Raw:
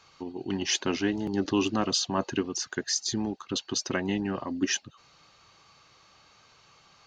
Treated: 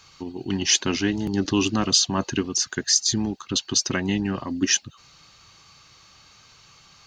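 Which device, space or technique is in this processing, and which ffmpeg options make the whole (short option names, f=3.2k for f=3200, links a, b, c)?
smiley-face EQ: -af "lowshelf=f=150:g=6.5,equalizer=f=580:t=o:w=1.7:g=-5,highshelf=f=5k:g=8.5,volume=4.5dB"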